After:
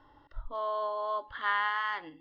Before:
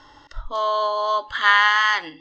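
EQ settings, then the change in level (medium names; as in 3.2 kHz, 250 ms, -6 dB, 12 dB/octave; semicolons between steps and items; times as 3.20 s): distance through air 370 m; peaking EQ 2.1 kHz -5 dB 1.9 oct; -7.5 dB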